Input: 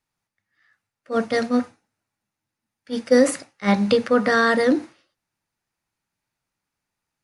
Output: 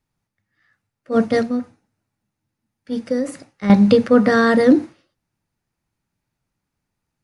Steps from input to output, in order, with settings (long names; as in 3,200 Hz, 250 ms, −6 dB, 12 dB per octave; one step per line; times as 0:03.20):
low-shelf EQ 420 Hz +12 dB
0:01.41–0:03.70: downward compressor 3 to 1, threshold −21 dBFS, peak gain reduction 13 dB
level −1 dB